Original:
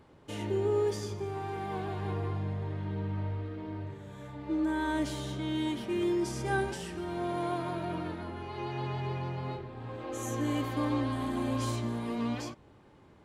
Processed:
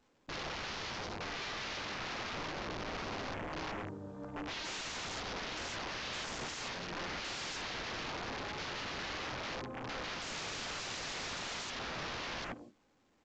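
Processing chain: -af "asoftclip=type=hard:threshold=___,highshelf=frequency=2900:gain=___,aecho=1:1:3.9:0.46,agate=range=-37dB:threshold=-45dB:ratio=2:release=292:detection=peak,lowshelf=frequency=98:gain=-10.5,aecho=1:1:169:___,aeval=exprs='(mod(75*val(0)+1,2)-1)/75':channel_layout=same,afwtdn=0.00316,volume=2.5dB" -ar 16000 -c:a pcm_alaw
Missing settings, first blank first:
-24.5dB, -9, 0.178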